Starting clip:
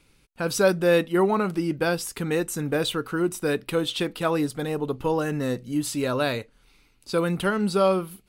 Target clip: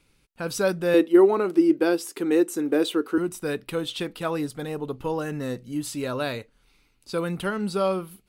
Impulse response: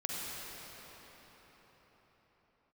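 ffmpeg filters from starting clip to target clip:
-filter_complex "[0:a]asettb=1/sr,asplit=3[s0][s1][s2];[s0]atrim=end=0.944[s3];[s1]atrim=start=0.94:end=3.18,asetpts=PTS-STARTPTS,afade=t=in:d=0.004:c=qsin,afade=t=out:st=2.236:d=0.004:c=qsin,highpass=f=330:t=q:w=4.1[s4];[s2]atrim=start=3.176[s5];[s3][s4]acrossfade=d=0.004:c1=hsin:c2=qsin[s6];[s6][s5]acrossfade=d=0.004:c1=qsin:c2=hsin,volume=0.668"

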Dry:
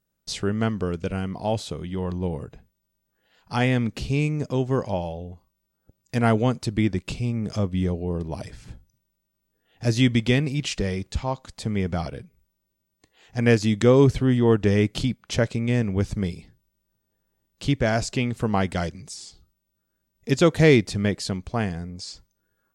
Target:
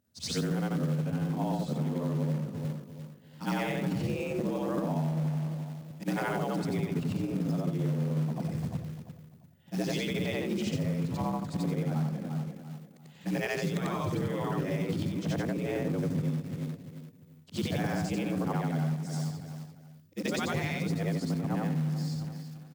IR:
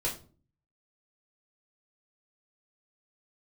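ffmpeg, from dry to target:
-filter_complex "[0:a]afftfilt=real='re':imag='-im':win_size=8192:overlap=0.75,afftfilt=real='re*lt(hypot(re,im),0.282)':imag='im*lt(hypot(re,im),0.282)':win_size=1024:overlap=0.75,equalizer=f=86:w=5.2:g=10.5,aeval=exprs='0.178*(cos(1*acos(clip(val(0)/0.178,-1,1)))-cos(1*PI/2))+0.01*(cos(3*acos(clip(val(0)/0.178,-1,1)))-cos(3*PI/2))+0.00447*(cos(4*acos(clip(val(0)/0.178,-1,1)))-cos(4*PI/2))+0.00316*(cos(6*acos(clip(val(0)/0.178,-1,1)))-cos(6*PI/2))':c=same,acrossover=split=200|1200[s0][s1][s2];[s0]acontrast=68[s3];[s3][s1][s2]amix=inputs=3:normalize=0,afreqshift=68,asplit=2[s4][s5];[s5]adelay=345,lowpass=f=2700:p=1,volume=0.211,asplit=2[s6][s7];[s7]adelay=345,lowpass=f=2700:p=1,volume=0.32,asplit=2[s8][s9];[s9]adelay=345,lowpass=f=2700:p=1,volume=0.32[s10];[s4][s6][s8][s10]amix=inputs=4:normalize=0,acrusher=bits=4:mode=log:mix=0:aa=0.000001,acompressor=threshold=0.0251:ratio=8,adynamicequalizer=threshold=0.00158:dfrequency=1800:dqfactor=0.7:tfrequency=1800:tqfactor=0.7:attack=5:release=100:ratio=0.375:range=3.5:mode=cutabove:tftype=highshelf,volume=1.78"

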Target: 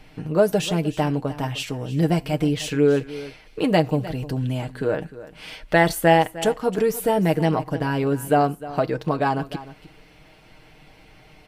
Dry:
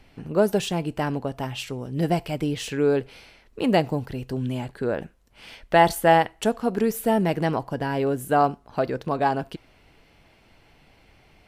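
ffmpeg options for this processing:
-filter_complex "[0:a]aecho=1:1:6.5:0.56,asplit=2[s0][s1];[s1]acompressor=threshold=0.02:ratio=6,volume=0.708[s2];[s0][s2]amix=inputs=2:normalize=0,aecho=1:1:305:0.158"

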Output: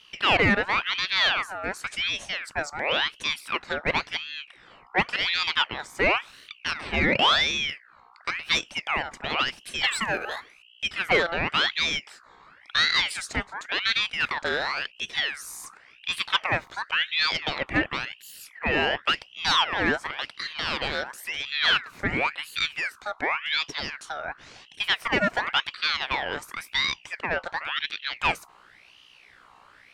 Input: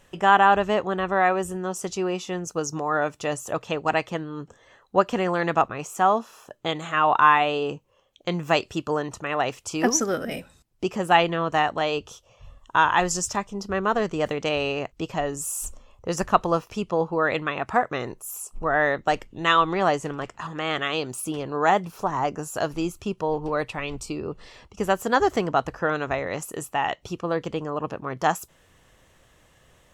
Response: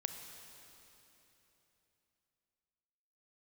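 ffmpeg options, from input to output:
-filter_complex "[0:a]aeval=exprs='val(0)+0.00631*(sin(2*PI*60*n/s)+sin(2*PI*2*60*n/s)/2+sin(2*PI*3*60*n/s)/3+sin(2*PI*4*60*n/s)/4+sin(2*PI*5*60*n/s)/5)':c=same,asplit=2[s0][s1];[s1]highpass=f=720:p=1,volume=7.94,asoftclip=type=tanh:threshold=0.75[s2];[s0][s2]amix=inputs=2:normalize=0,lowpass=f=1800:p=1,volume=0.501,aeval=exprs='val(0)*sin(2*PI*2000*n/s+2000*0.5/0.93*sin(2*PI*0.93*n/s))':c=same,volume=0.531"

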